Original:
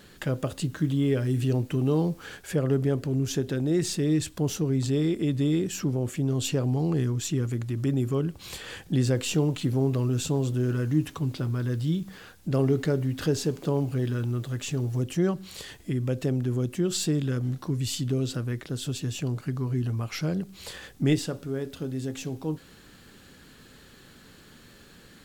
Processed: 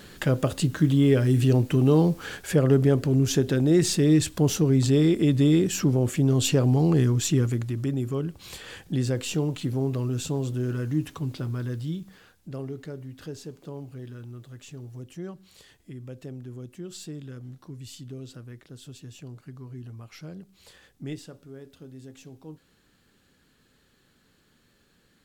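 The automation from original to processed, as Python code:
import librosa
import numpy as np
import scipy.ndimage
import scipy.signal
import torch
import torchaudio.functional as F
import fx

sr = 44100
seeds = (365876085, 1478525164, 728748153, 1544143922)

y = fx.gain(x, sr, db=fx.line((7.39, 5.0), (7.92, -2.0), (11.6, -2.0), (12.73, -12.5)))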